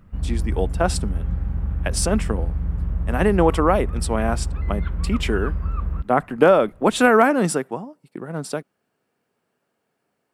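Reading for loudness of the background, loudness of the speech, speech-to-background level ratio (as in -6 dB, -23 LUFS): -27.0 LUFS, -21.5 LUFS, 5.5 dB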